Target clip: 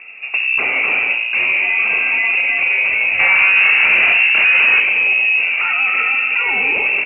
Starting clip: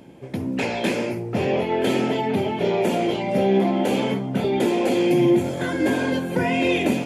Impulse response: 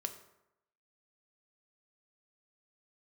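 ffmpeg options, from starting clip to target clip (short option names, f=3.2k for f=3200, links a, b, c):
-filter_complex "[0:a]equalizer=f=680:w=0.35:g=7.5,alimiter=limit=-13.5dB:level=0:latency=1:release=28,asettb=1/sr,asplit=3[a][b][c];[a]atrim=end=3.194[d];[b]atrim=start=3.19:end=4.8,asetpts=PTS-STARTPTS,afade=t=in:d=0.004:c=qsin,afade=t=out:st=1.606:d=0.004:c=qsin,aeval=exprs='0.211*sin(PI/2*1.58*val(0)/0.211)':c=same[e];[c]atrim=start=4.796[f];[d][e]acrossfade=d=0.004:c1=hsin:c2=qsin[g];[g][f]acrossfade=d=0.004:c1=qsin:c2=hsin,lowpass=f=2.5k:t=q:w=0.5098,lowpass=f=2.5k:t=q:w=0.6013,lowpass=f=2.5k:t=q:w=0.9,lowpass=f=2.5k:t=q:w=2.563,afreqshift=-2900,asplit=8[h][i][j][k][l][m][n][o];[i]adelay=94,afreqshift=59,volume=-13dB[p];[j]adelay=188,afreqshift=118,volume=-16.9dB[q];[k]adelay=282,afreqshift=177,volume=-20.8dB[r];[l]adelay=376,afreqshift=236,volume=-24.6dB[s];[m]adelay=470,afreqshift=295,volume=-28.5dB[t];[n]adelay=564,afreqshift=354,volume=-32.4dB[u];[o]adelay=658,afreqshift=413,volume=-36.3dB[v];[h][p][q][r][s][t][u][v]amix=inputs=8:normalize=0,volume=4.5dB"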